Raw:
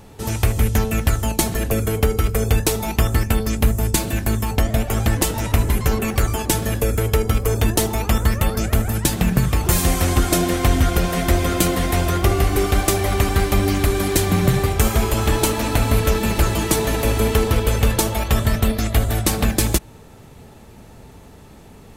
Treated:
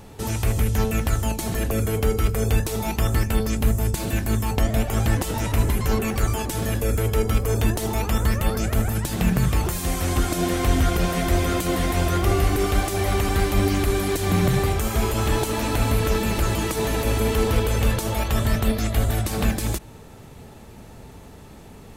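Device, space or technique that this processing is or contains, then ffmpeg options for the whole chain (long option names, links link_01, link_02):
de-esser from a sidechain: -filter_complex "[0:a]asplit=2[link_01][link_02];[link_02]highpass=4100,apad=whole_len=968850[link_03];[link_01][link_03]sidechaincompress=threshold=-34dB:ratio=3:attack=4.8:release=32"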